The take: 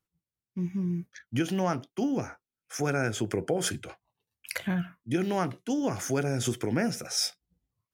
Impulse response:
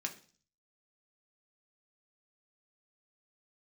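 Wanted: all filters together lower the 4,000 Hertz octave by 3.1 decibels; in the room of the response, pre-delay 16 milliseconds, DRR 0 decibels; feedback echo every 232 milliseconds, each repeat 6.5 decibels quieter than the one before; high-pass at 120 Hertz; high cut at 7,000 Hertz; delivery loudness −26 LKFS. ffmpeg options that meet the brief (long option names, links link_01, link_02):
-filter_complex "[0:a]highpass=120,lowpass=7000,equalizer=frequency=4000:width_type=o:gain=-3.5,aecho=1:1:232|464|696|928|1160|1392:0.473|0.222|0.105|0.0491|0.0231|0.0109,asplit=2[link_01][link_02];[1:a]atrim=start_sample=2205,adelay=16[link_03];[link_02][link_03]afir=irnorm=-1:irlink=0,volume=-1dB[link_04];[link_01][link_04]amix=inputs=2:normalize=0,volume=2dB"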